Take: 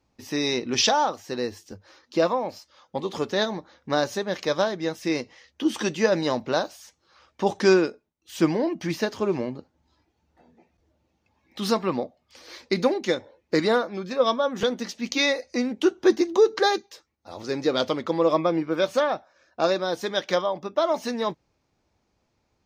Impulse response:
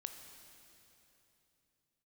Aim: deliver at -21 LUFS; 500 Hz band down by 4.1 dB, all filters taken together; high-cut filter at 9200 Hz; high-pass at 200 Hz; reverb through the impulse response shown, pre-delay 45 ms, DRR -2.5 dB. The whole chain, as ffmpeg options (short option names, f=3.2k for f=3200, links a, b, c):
-filter_complex "[0:a]highpass=200,lowpass=9.2k,equalizer=f=500:t=o:g=-5,asplit=2[a][b];[1:a]atrim=start_sample=2205,adelay=45[c];[b][c]afir=irnorm=-1:irlink=0,volume=5.5dB[d];[a][d]amix=inputs=2:normalize=0,volume=2.5dB"